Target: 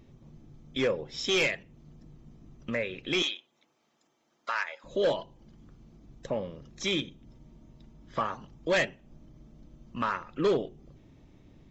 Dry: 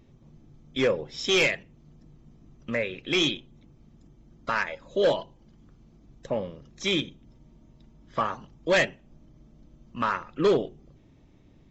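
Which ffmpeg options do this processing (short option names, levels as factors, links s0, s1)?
-filter_complex "[0:a]asettb=1/sr,asplit=3[s0][s1][s2];[s0]atrim=end=3.224[s3];[s1]atrim=start=3.22:end=4.84,asetpts=PTS-STARTPTS,afade=t=in:d=0.004:c=qsin,afade=t=out:st=1.616:d=0.004:c=qsin,highpass=780[s4];[s2]atrim=start=4.836[s5];[s3][s4]acrossfade=d=0.004:c1=hsin:c2=qsin[s6];[s6][s5]acrossfade=d=0.004:c1=qsin:c2=hsin,asplit=2[s7][s8];[s8]acompressor=threshold=0.0158:ratio=6,volume=1.12[s9];[s7][s9]amix=inputs=2:normalize=0,volume=0.531"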